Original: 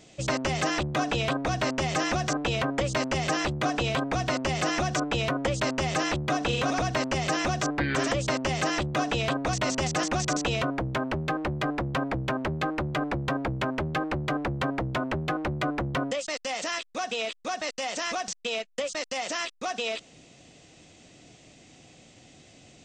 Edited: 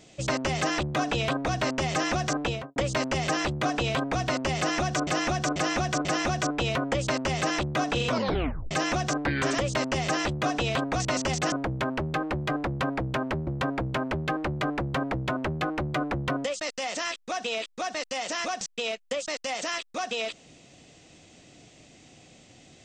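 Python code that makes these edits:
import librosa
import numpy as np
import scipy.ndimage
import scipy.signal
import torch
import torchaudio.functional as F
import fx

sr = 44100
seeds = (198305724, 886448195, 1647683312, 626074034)

y = fx.studio_fade_out(x, sr, start_s=2.43, length_s=0.33)
y = fx.edit(y, sr, fx.repeat(start_s=4.58, length_s=0.49, count=4),
    fx.tape_stop(start_s=6.61, length_s=0.63),
    fx.cut(start_s=10.05, length_s=0.61),
    fx.cut(start_s=12.61, length_s=0.53), tone=tone)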